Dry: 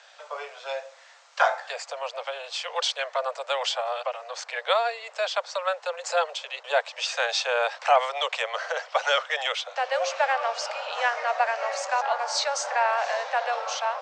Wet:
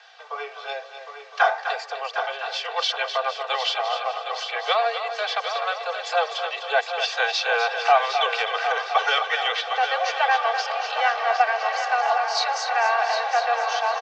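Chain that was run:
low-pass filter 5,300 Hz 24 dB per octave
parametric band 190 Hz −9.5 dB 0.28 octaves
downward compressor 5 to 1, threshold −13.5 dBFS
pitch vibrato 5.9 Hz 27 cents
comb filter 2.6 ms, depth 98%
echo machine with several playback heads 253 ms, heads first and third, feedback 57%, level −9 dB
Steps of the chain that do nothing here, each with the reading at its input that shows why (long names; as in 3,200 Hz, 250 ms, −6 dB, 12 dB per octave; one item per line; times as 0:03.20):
parametric band 190 Hz: nothing at its input below 400 Hz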